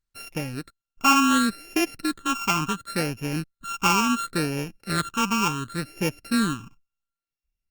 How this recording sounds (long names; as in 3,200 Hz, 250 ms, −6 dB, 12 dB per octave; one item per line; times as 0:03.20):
a buzz of ramps at a fixed pitch in blocks of 32 samples
phaser sweep stages 8, 0.7 Hz, lowest notch 530–1,200 Hz
Opus